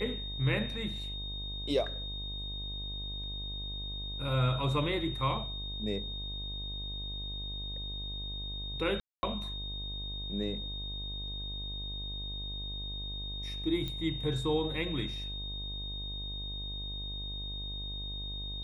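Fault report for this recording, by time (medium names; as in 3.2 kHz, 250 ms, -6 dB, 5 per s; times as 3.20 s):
buzz 50 Hz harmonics 22 -41 dBFS
whine 3.7 kHz -39 dBFS
9.00–9.23 s: dropout 230 ms
13.88 s: pop -24 dBFS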